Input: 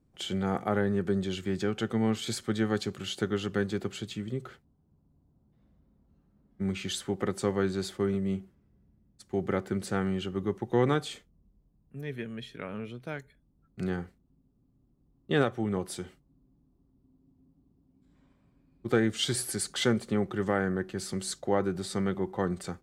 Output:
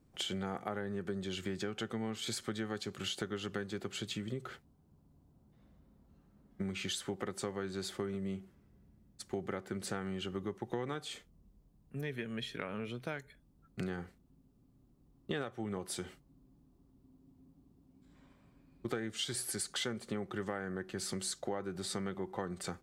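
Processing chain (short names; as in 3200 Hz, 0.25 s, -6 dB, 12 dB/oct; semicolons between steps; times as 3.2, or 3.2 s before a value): low shelf 490 Hz -5 dB; compressor 6:1, threshold -41 dBFS, peak gain reduction 17.5 dB; gain +5.5 dB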